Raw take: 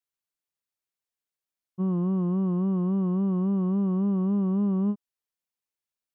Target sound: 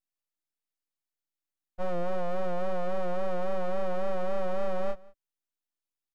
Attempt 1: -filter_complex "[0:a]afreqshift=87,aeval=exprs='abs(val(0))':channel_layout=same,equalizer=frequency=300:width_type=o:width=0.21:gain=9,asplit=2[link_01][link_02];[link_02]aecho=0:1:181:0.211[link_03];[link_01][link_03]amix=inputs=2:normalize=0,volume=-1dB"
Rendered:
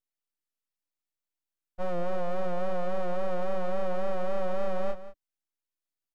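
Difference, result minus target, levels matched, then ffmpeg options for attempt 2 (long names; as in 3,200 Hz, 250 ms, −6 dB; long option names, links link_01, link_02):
echo-to-direct +9.5 dB
-filter_complex "[0:a]afreqshift=87,aeval=exprs='abs(val(0))':channel_layout=same,equalizer=frequency=300:width_type=o:width=0.21:gain=9,asplit=2[link_01][link_02];[link_02]aecho=0:1:181:0.0708[link_03];[link_01][link_03]amix=inputs=2:normalize=0,volume=-1dB"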